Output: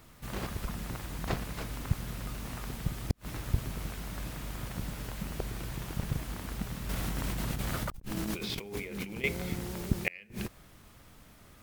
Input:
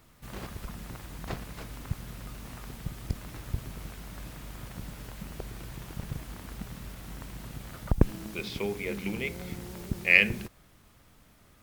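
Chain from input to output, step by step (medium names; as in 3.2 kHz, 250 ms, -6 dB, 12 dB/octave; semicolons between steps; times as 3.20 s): 6.89–9.24 s: compressor with a negative ratio -42 dBFS, ratio -1; inverted gate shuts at -16 dBFS, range -33 dB; trim +3.5 dB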